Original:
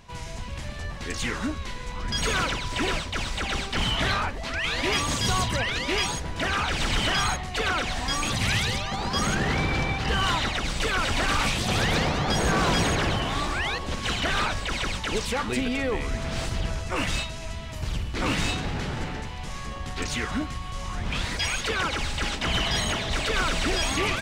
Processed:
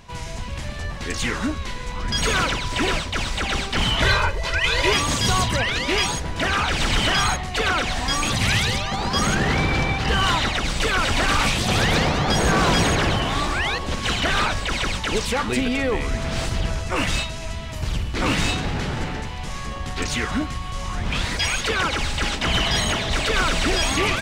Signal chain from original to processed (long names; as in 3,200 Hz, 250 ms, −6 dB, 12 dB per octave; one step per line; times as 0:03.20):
0:04.02–0:04.93: comb filter 2 ms, depth 81%
level +4.5 dB